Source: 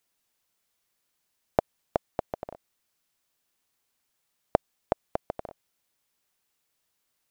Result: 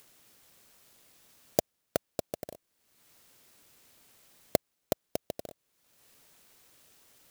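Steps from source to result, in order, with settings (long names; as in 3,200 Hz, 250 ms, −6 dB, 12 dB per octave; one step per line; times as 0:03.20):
high-pass filter 80 Hz
flat-topped bell 1,300 Hz −13 dB
upward compression, threshold −43 dBFS
converter with an unsteady clock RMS 0.11 ms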